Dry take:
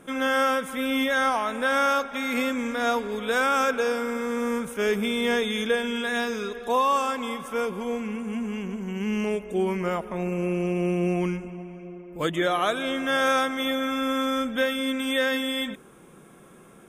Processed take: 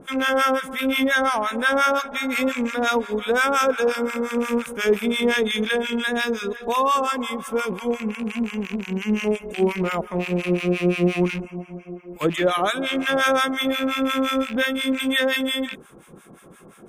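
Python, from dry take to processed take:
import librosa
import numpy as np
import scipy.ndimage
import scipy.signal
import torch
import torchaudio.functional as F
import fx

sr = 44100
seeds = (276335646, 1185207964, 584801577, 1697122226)

y = fx.rattle_buzz(x, sr, strikes_db=-34.0, level_db=-25.0)
y = fx.harmonic_tremolo(y, sr, hz=5.7, depth_pct=100, crossover_hz=990.0)
y = F.gain(torch.from_numpy(y), 8.0).numpy()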